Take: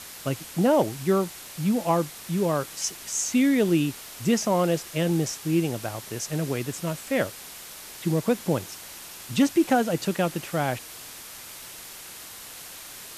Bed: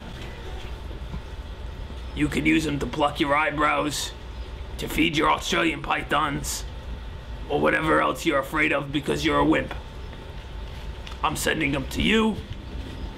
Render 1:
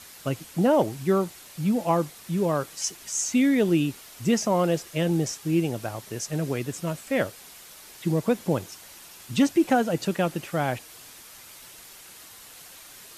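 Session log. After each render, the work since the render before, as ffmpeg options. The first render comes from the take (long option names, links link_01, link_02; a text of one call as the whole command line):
ffmpeg -i in.wav -af "afftdn=noise_reduction=6:noise_floor=-42" out.wav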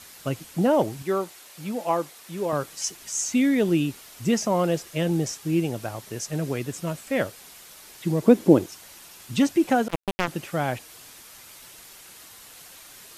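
ffmpeg -i in.wav -filter_complex "[0:a]asettb=1/sr,asplit=3[link_01][link_02][link_03];[link_01]atrim=end=1.024[link_04];[link_02]atrim=start=1.02:end=2.53,asetpts=PTS-STARTPTS,afade=type=in:duration=0.004:curve=qsin,afade=type=out:start_time=1.506:duration=0.004:curve=qsin,bass=frequency=250:gain=-13,treble=frequency=4000:gain=-1[link_05];[link_03]atrim=start=2.526[link_06];[link_04][link_05]acrossfade=duration=0.004:curve1=hsin:curve2=qsin[link_07];[link_07][link_06]acrossfade=duration=0.004:curve1=qsin:curve2=hsin,asettb=1/sr,asplit=3[link_08][link_09][link_10];[link_08]atrim=end=8.224[link_11];[link_09]atrim=start=8.22:end=8.66,asetpts=PTS-STARTPTS,afade=type=in:duration=0.004:curve=qsin,afade=type=out:start_time=0.436:duration=0.004:curve=qsin,equalizer=frequency=320:width_type=o:width=1.1:gain=15[link_12];[link_10]atrim=start=8.656[link_13];[link_11][link_12]acrossfade=duration=0.004:curve1=hsin:curve2=qsin[link_14];[link_14][link_13]acrossfade=duration=0.004:curve1=qsin:curve2=hsin,asettb=1/sr,asplit=3[link_15][link_16][link_17];[link_15]atrim=end=9.884[link_18];[link_16]atrim=start=9.88:end=10.28,asetpts=PTS-STARTPTS,afade=type=in:duration=0.004:curve=qsin,afade=type=out:start_time=0.396:duration=0.004:curve=qsin,acrusher=bits=2:mix=0:aa=0.5[link_19];[link_17]atrim=start=10.276[link_20];[link_18][link_19]acrossfade=duration=0.004:curve1=hsin:curve2=qsin[link_21];[link_21][link_20]acrossfade=duration=0.004:curve1=qsin:curve2=hsin" out.wav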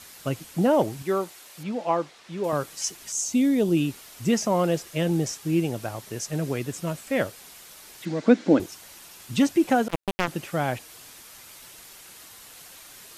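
ffmpeg -i in.wav -filter_complex "[0:a]asettb=1/sr,asplit=3[link_01][link_02][link_03];[link_01]atrim=end=1.634[link_04];[link_02]atrim=start=1.63:end=2.44,asetpts=PTS-STARTPTS,afade=type=in:duration=0.004:curve=qsin,afade=type=out:start_time=0.806:duration=0.004:curve=qsin,lowpass=4900[link_05];[link_03]atrim=start=2.436[link_06];[link_04][link_05]acrossfade=duration=0.004:curve1=hsin:curve2=qsin[link_07];[link_07][link_06]acrossfade=duration=0.004:curve1=qsin:curve2=hsin,asettb=1/sr,asplit=3[link_08][link_09][link_10];[link_08]atrim=end=3.124[link_11];[link_09]atrim=start=3.12:end=3.77,asetpts=PTS-STARTPTS,afade=type=in:duration=0.004:curve=qsin,afade=type=out:start_time=0.646:duration=0.004:curve=qsin,equalizer=frequency=1800:width=1.1:gain=-9.5[link_12];[link_10]atrim=start=3.766[link_13];[link_11][link_12]acrossfade=duration=0.004:curve1=hsin:curve2=qsin[link_14];[link_14][link_13]acrossfade=duration=0.004:curve1=qsin:curve2=hsin,asettb=1/sr,asplit=3[link_15][link_16][link_17];[link_15]atrim=end=8.054[link_18];[link_16]atrim=start=8.05:end=8.6,asetpts=PTS-STARTPTS,afade=type=in:duration=0.004:curve=qsin,afade=type=out:start_time=0.546:duration=0.004:curve=qsin,highpass=240,equalizer=frequency=270:width_type=q:width=4:gain=5,equalizer=frequency=380:width_type=q:width=4:gain=-10,equalizer=frequency=1000:width_type=q:width=4:gain=-4,equalizer=frequency=1500:width_type=q:width=4:gain=7,equalizer=frequency=2100:width_type=q:width=4:gain=5,equalizer=frequency=4000:width_type=q:width=4:gain=4,lowpass=frequency=6600:width=0.5412,lowpass=frequency=6600:width=1.3066[link_19];[link_17]atrim=start=8.596[link_20];[link_18][link_19]acrossfade=duration=0.004:curve1=hsin:curve2=qsin[link_21];[link_21][link_20]acrossfade=duration=0.004:curve1=qsin:curve2=hsin" out.wav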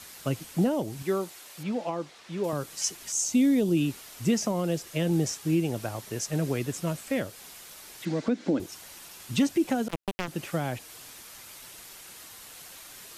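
ffmpeg -i in.wav -filter_complex "[0:a]alimiter=limit=-14.5dB:level=0:latency=1:release=221,acrossover=split=380|3000[link_01][link_02][link_03];[link_02]acompressor=threshold=-31dB:ratio=6[link_04];[link_01][link_04][link_03]amix=inputs=3:normalize=0" out.wav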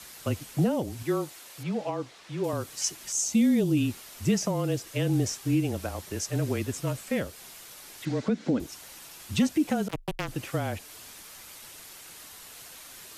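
ffmpeg -i in.wav -af "afreqshift=-25" out.wav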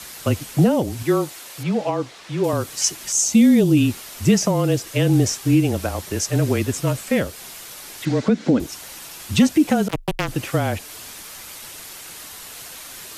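ffmpeg -i in.wav -af "volume=9dB" out.wav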